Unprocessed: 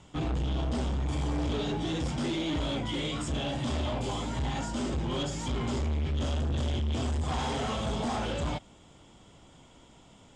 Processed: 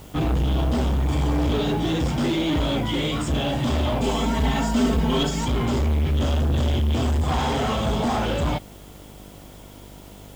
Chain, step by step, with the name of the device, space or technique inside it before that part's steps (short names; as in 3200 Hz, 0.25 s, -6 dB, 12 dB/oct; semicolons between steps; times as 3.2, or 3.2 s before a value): high shelf 4500 Hz -5.5 dB; video cassette with head-switching buzz (buzz 50 Hz, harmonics 15, -54 dBFS -4 dB/oct; white noise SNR 30 dB); 4.01–5.45 comb 4.5 ms, depth 91%; gain +8.5 dB